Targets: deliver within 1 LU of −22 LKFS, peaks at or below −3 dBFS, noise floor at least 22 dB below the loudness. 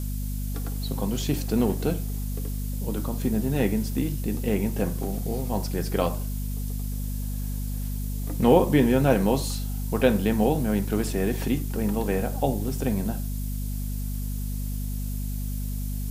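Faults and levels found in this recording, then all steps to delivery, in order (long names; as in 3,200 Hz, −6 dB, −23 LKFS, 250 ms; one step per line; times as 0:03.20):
mains hum 50 Hz; hum harmonics up to 250 Hz; level of the hum −27 dBFS; background noise floor −30 dBFS; target noise floor −49 dBFS; integrated loudness −27.0 LKFS; sample peak −5.5 dBFS; target loudness −22.0 LKFS
→ hum removal 50 Hz, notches 5
noise reduction from a noise print 19 dB
level +5 dB
brickwall limiter −3 dBFS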